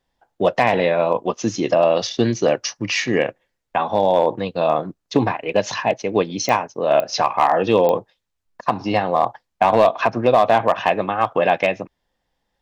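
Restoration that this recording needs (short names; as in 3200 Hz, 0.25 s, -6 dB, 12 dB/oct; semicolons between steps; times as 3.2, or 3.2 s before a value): clip repair -6 dBFS; de-click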